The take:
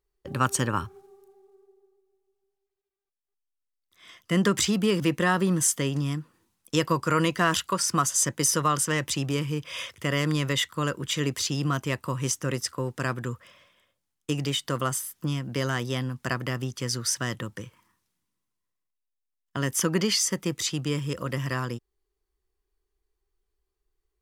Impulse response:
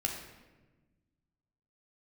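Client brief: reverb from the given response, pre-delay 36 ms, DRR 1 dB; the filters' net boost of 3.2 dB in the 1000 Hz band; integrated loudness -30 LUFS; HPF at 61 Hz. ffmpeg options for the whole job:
-filter_complex "[0:a]highpass=61,equalizer=f=1k:t=o:g=4,asplit=2[a][b];[1:a]atrim=start_sample=2205,adelay=36[c];[b][c]afir=irnorm=-1:irlink=0,volume=-4.5dB[d];[a][d]amix=inputs=2:normalize=0,volume=-6.5dB"

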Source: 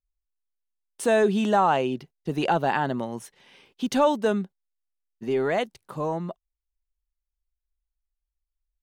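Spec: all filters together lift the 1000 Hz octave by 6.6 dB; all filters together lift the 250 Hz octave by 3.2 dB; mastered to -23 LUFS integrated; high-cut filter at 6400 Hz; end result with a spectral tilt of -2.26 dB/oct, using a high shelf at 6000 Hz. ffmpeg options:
-af "lowpass=6.4k,equalizer=f=250:t=o:g=3.5,equalizer=f=1k:t=o:g=8.5,highshelf=f=6k:g=-8,volume=-2dB"

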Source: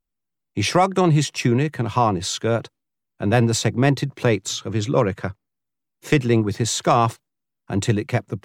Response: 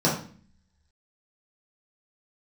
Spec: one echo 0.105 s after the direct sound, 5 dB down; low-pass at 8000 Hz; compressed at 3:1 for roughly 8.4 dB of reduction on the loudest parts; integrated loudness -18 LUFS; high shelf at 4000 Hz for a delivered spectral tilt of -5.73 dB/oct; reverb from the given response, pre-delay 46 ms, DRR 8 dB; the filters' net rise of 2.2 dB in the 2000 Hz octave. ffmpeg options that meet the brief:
-filter_complex "[0:a]lowpass=8k,equalizer=f=2k:t=o:g=4,highshelf=f=4k:g=-5.5,acompressor=threshold=-23dB:ratio=3,aecho=1:1:105:0.562,asplit=2[a][b];[1:a]atrim=start_sample=2205,adelay=46[c];[b][c]afir=irnorm=-1:irlink=0,volume=-23dB[d];[a][d]amix=inputs=2:normalize=0,volume=6dB"

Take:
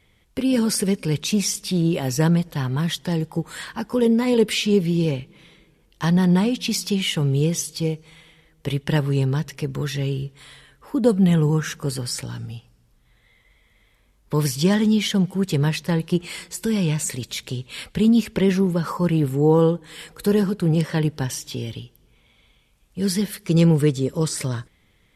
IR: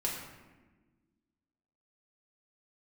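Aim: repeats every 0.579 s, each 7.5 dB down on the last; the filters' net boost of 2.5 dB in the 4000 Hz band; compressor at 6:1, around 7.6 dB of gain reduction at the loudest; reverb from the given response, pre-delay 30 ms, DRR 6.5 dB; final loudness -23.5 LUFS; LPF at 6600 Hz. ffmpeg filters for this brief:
-filter_complex "[0:a]lowpass=6.6k,equalizer=f=4k:t=o:g=4,acompressor=threshold=-20dB:ratio=6,aecho=1:1:579|1158|1737|2316|2895:0.422|0.177|0.0744|0.0312|0.0131,asplit=2[a][b];[1:a]atrim=start_sample=2205,adelay=30[c];[b][c]afir=irnorm=-1:irlink=0,volume=-11dB[d];[a][d]amix=inputs=2:normalize=0,volume=0.5dB"

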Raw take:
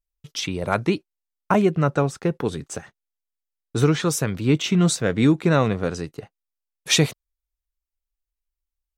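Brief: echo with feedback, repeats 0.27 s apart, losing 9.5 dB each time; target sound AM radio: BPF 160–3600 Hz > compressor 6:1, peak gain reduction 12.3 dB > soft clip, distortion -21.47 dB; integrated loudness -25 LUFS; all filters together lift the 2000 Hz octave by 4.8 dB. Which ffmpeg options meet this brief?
-af "highpass=160,lowpass=3.6k,equalizer=f=2k:t=o:g=7,aecho=1:1:270|540|810|1080:0.335|0.111|0.0365|0.012,acompressor=threshold=-24dB:ratio=6,asoftclip=threshold=-15.5dB,volume=5.5dB"

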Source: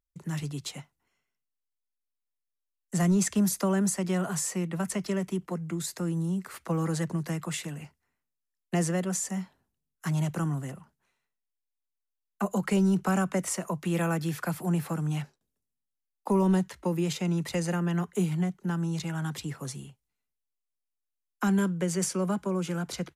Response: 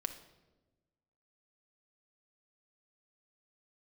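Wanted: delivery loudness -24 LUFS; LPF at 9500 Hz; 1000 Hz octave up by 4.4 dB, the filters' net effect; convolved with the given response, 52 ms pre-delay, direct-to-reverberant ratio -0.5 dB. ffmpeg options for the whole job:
-filter_complex "[0:a]lowpass=9.5k,equalizer=f=1k:t=o:g=5.5,asplit=2[a][b];[1:a]atrim=start_sample=2205,adelay=52[c];[b][c]afir=irnorm=-1:irlink=0,volume=0.5dB[d];[a][d]amix=inputs=2:normalize=0,volume=0.5dB"

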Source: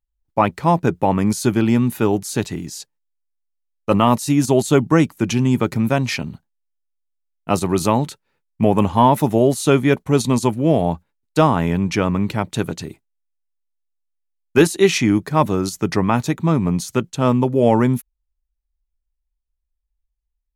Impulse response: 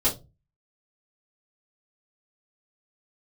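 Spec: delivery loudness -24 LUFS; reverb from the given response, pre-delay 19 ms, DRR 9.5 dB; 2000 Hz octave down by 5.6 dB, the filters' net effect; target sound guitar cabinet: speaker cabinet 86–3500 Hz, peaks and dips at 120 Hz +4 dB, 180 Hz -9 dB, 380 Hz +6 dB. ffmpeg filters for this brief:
-filter_complex "[0:a]equalizer=f=2k:t=o:g=-7.5,asplit=2[a][b];[1:a]atrim=start_sample=2205,adelay=19[c];[b][c]afir=irnorm=-1:irlink=0,volume=-20.5dB[d];[a][d]amix=inputs=2:normalize=0,highpass=86,equalizer=f=120:t=q:w=4:g=4,equalizer=f=180:t=q:w=4:g=-9,equalizer=f=380:t=q:w=4:g=6,lowpass=f=3.5k:w=0.5412,lowpass=f=3.5k:w=1.3066,volume=-7.5dB"

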